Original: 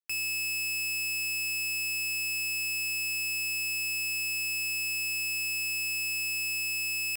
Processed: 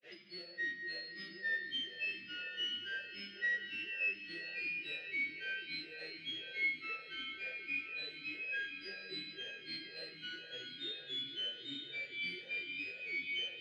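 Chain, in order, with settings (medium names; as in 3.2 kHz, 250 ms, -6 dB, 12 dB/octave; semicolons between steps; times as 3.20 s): added noise white -46 dBFS; granulator, grains 6.7 per s, pitch spread up and down by 12 st; distance through air 250 m; peak limiter -39.5 dBFS, peak gain reduction 10 dB; time stretch by phase-locked vocoder 1.9×; on a send: echo that smears into a reverb 968 ms, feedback 52%, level -11 dB; on the sum: simulated room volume 140 m³, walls hard, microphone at 0.38 m; talking filter e-i 2 Hz; trim +18 dB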